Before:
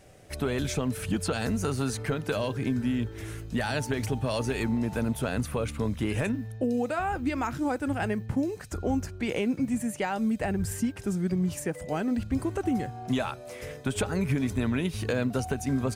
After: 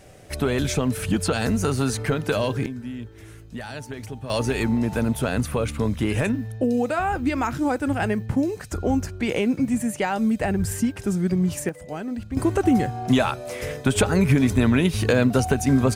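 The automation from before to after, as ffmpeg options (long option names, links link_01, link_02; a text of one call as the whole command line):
ffmpeg -i in.wav -af "asetnsamples=nb_out_samples=441:pad=0,asendcmd='2.66 volume volume -5.5dB;4.3 volume volume 5.5dB;11.69 volume volume -2dB;12.37 volume volume 9dB',volume=6dB" out.wav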